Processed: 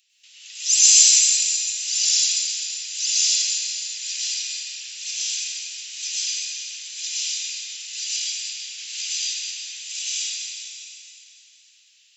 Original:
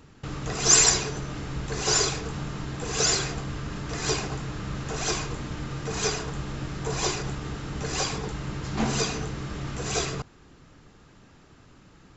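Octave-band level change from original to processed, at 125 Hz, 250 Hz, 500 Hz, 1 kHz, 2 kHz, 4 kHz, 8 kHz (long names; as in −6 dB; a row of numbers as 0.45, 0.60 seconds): below −40 dB, below −40 dB, below −40 dB, below −30 dB, −1.0 dB, +8.0 dB, can't be measured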